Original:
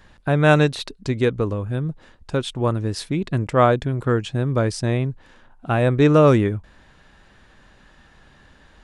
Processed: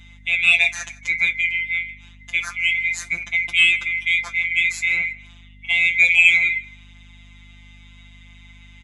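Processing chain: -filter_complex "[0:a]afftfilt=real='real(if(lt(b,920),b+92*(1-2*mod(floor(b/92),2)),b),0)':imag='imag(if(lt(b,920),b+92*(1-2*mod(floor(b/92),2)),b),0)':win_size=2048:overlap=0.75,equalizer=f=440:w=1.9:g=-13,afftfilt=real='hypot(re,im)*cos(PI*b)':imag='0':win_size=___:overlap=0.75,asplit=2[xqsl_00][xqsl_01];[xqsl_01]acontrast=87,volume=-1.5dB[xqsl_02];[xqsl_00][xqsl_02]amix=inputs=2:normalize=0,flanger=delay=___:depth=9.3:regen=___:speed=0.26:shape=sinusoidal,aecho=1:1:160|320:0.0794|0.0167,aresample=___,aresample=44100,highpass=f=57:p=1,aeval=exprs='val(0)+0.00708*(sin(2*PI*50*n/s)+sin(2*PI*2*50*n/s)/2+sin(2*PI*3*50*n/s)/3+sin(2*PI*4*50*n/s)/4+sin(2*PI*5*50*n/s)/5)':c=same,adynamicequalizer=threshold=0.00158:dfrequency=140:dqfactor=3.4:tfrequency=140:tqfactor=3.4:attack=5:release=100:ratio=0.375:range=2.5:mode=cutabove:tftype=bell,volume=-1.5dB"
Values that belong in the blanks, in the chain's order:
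1024, 9.1, -46, 22050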